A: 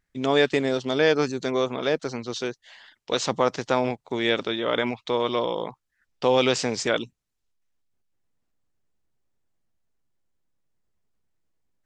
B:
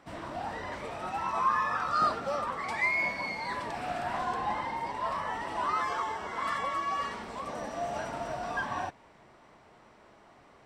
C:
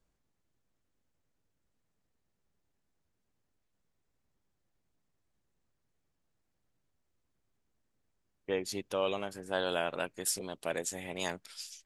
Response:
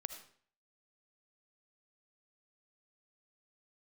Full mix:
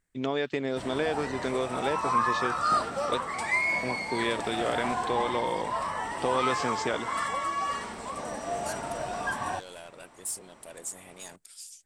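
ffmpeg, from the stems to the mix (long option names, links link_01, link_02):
-filter_complex "[0:a]lowpass=3600,acompressor=threshold=-22dB:ratio=6,volume=-3dB,asplit=3[link_01][link_02][link_03];[link_01]atrim=end=3.18,asetpts=PTS-STARTPTS,afade=type=out:start_time=3.176:duration=0.004:curve=hsin[link_04];[link_02]atrim=start=3.18:end=3.83,asetpts=PTS-STARTPTS,volume=0[link_05];[link_03]atrim=start=3.83,asetpts=PTS-STARTPTS,afade=type=in:duration=0.004:curve=hsin[link_06];[link_04][link_05][link_06]concat=n=3:v=0:a=1[link_07];[1:a]adelay=700,volume=1.5dB[link_08];[2:a]highshelf=frequency=8100:gain=10,asoftclip=type=tanh:threshold=-29.5dB,volume=-8.5dB[link_09];[link_07][link_08][link_09]amix=inputs=3:normalize=0,equalizer=frequency=8500:width=1.8:gain=12.5"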